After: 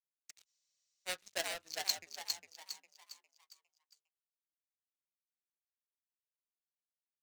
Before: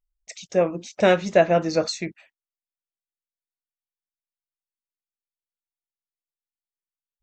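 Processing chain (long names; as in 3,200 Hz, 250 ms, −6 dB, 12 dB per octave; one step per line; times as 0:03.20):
adaptive Wiener filter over 9 samples
high-pass filter 240 Hz 6 dB per octave
high-shelf EQ 5,100 Hz −5.5 dB
in parallel at −4.5 dB: wave folding −19.5 dBFS
on the sum: first difference
power curve on the samples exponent 2
on a send: echo with shifted repeats 406 ms, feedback 42%, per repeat +89 Hz, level −4 dB
on the sum: frozen spectrum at 0:00.48, 0.59 s
level +5.5 dB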